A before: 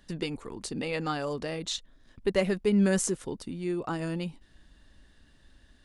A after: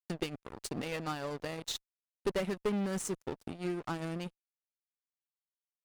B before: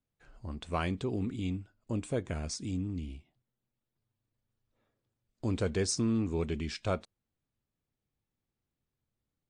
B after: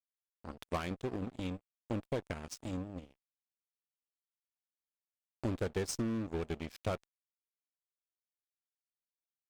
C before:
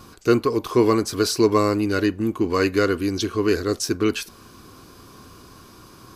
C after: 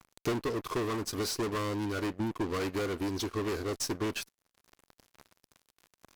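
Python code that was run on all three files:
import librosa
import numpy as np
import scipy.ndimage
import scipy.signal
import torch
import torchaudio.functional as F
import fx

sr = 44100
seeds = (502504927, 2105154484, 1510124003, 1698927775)

y = np.sign(x) * np.maximum(np.abs(x) - 10.0 ** (-38.5 / 20.0), 0.0)
y = fx.tube_stage(y, sr, drive_db=31.0, bias=0.35)
y = fx.transient(y, sr, attack_db=6, sustain_db=-7)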